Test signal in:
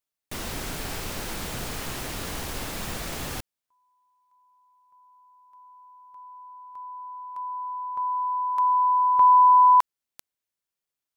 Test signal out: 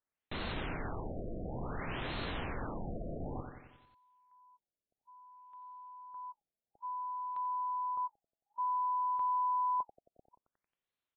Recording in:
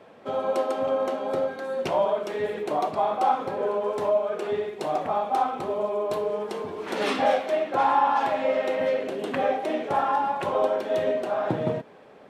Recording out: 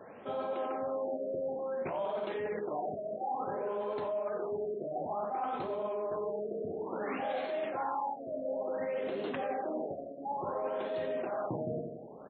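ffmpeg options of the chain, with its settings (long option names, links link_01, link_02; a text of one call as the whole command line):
ffmpeg -i in.wav -af "aecho=1:1:90|180|270|360|450|540:0.266|0.144|0.0776|0.0419|0.0226|0.0122,areverse,acompressor=threshold=-34dB:ratio=5:attack=9.5:release=66:knee=6:detection=rms,areverse,afftfilt=real='re*lt(b*sr/1024,690*pow(4400/690,0.5+0.5*sin(2*PI*0.57*pts/sr)))':imag='im*lt(b*sr/1024,690*pow(4400/690,0.5+0.5*sin(2*PI*0.57*pts/sr)))':win_size=1024:overlap=0.75" out.wav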